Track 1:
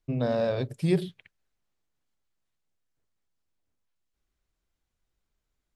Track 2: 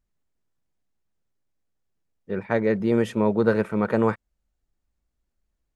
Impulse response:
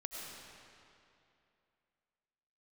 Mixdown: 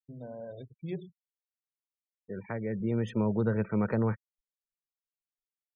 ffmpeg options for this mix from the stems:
-filter_complex "[0:a]highpass=f=60:w=0.5412,highpass=f=60:w=1.3066,dynaudnorm=f=360:g=7:m=6.68,volume=0.15,asplit=2[s0][s1];[1:a]adynamicequalizer=threshold=0.01:dfrequency=1100:dqfactor=3.3:tfrequency=1100:tqfactor=3.3:attack=5:release=100:ratio=0.375:range=1.5:mode=cutabove:tftype=bell,acrossover=split=160[s2][s3];[s3]acompressor=threshold=0.0282:ratio=6[s4];[s2][s4]amix=inputs=2:normalize=0,volume=1.26[s5];[s1]apad=whole_len=253969[s6];[s5][s6]sidechaincompress=threshold=0.00141:ratio=5:attack=16:release=1290[s7];[s0][s7]amix=inputs=2:normalize=0,afftfilt=real='re*gte(hypot(re,im),0.00562)':imag='im*gte(hypot(re,im),0.00562)':win_size=1024:overlap=0.75,agate=range=0.0224:threshold=0.00112:ratio=3:detection=peak,highshelf=f=8000:g=12"

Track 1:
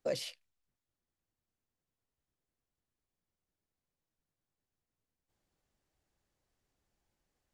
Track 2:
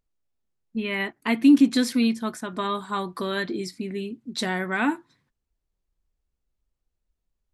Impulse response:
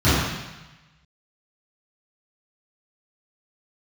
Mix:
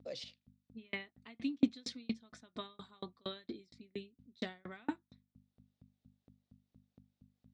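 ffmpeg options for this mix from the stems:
-filter_complex "[0:a]volume=0.668[s0];[1:a]aeval=exprs='val(0)+0.01*(sin(2*PI*50*n/s)+sin(2*PI*2*50*n/s)/2+sin(2*PI*3*50*n/s)/3+sin(2*PI*4*50*n/s)/4+sin(2*PI*5*50*n/s)/5)':c=same,aeval=exprs='val(0)*pow(10,-39*if(lt(mod(4.3*n/s,1),2*abs(4.3)/1000),1-mod(4.3*n/s,1)/(2*abs(4.3)/1000),(mod(4.3*n/s,1)-2*abs(4.3)/1000)/(1-2*abs(4.3)/1000))/20)':c=same,volume=0.473,asplit=2[s1][s2];[s2]apad=whole_len=332136[s3];[s0][s3]sidechaincompress=threshold=0.00141:ratio=10:attack=23:release=475[s4];[s4][s1]amix=inputs=2:normalize=0,highpass=150,equalizer=f=160:t=q:w=4:g=-4,equalizer=f=350:t=q:w=4:g=-4,equalizer=f=960:t=q:w=4:g=-6,equalizer=f=1600:t=q:w=4:g=-5,equalizer=f=3700:t=q:w=4:g=8,lowpass=f=6200:w=0.5412,lowpass=f=6200:w=1.3066"

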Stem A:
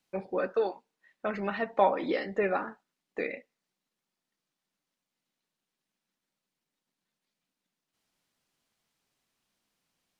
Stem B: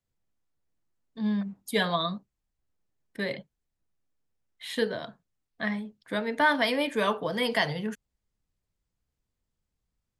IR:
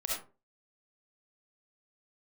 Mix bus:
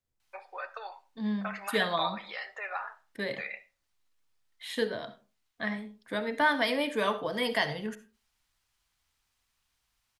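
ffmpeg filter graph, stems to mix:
-filter_complex "[0:a]acompressor=threshold=0.0282:ratio=2.5,highpass=f=810:w=0.5412,highpass=f=810:w=1.3066,adelay=200,volume=1.26,asplit=2[s0][s1];[s1]volume=0.106[s2];[1:a]equalizer=f=170:w=4.1:g=-7,volume=0.668,asplit=2[s3][s4];[s4]volume=0.188[s5];[2:a]atrim=start_sample=2205[s6];[s2][s5]amix=inputs=2:normalize=0[s7];[s7][s6]afir=irnorm=-1:irlink=0[s8];[s0][s3][s8]amix=inputs=3:normalize=0"

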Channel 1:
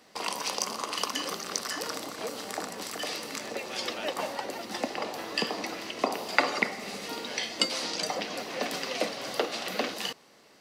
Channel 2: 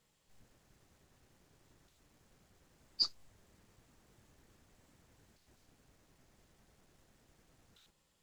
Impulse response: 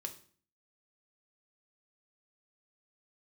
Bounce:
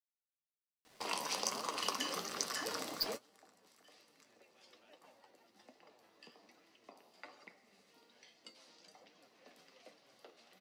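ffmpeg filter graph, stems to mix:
-filter_complex "[0:a]acrusher=bits=8:mix=0:aa=0.5,adelay=850,volume=0.794[s0];[1:a]aecho=1:1:6.4:0.63,acrusher=bits=3:mix=0:aa=0.5,volume=0.794,asplit=2[s1][s2];[s2]apad=whole_len=505222[s3];[s0][s3]sidechaingate=range=0.0631:threshold=0.00501:ratio=16:detection=peak[s4];[s4][s1]amix=inputs=2:normalize=0,flanger=delay=5.7:depth=7.5:regen=57:speed=1.2:shape=triangular"

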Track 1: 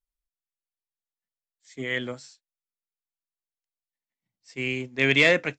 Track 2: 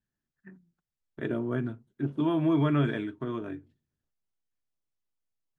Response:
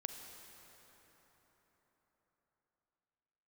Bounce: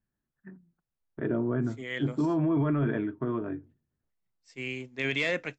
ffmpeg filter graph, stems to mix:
-filter_complex "[0:a]volume=0.447[s0];[1:a]lowpass=1600,volume=1.41[s1];[s0][s1]amix=inputs=2:normalize=0,alimiter=limit=0.106:level=0:latency=1:release=10"

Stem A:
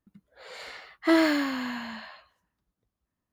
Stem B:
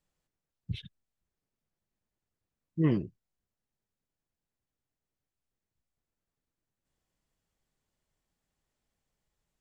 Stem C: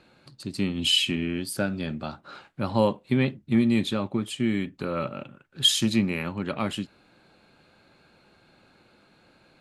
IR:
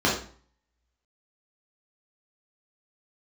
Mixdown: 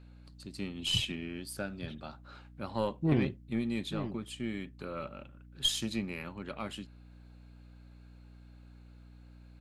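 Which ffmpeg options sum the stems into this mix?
-filter_complex "[1:a]aeval=exprs='(tanh(10*val(0)+0.35)-tanh(0.35))/10':c=same,adelay=250,volume=1.19,asplit=2[s0][s1];[s1]volume=0.316[s2];[2:a]lowshelf=f=240:g=-5.5,volume=0.335[s3];[s2]aecho=0:1:882:1[s4];[s0][s3][s4]amix=inputs=3:normalize=0,aeval=exprs='0.168*(cos(1*acos(clip(val(0)/0.168,-1,1)))-cos(1*PI/2))+0.0473*(cos(2*acos(clip(val(0)/0.168,-1,1)))-cos(2*PI/2))':c=same,aeval=exprs='val(0)+0.00251*(sin(2*PI*60*n/s)+sin(2*PI*2*60*n/s)/2+sin(2*PI*3*60*n/s)/3+sin(2*PI*4*60*n/s)/4+sin(2*PI*5*60*n/s)/5)':c=same"

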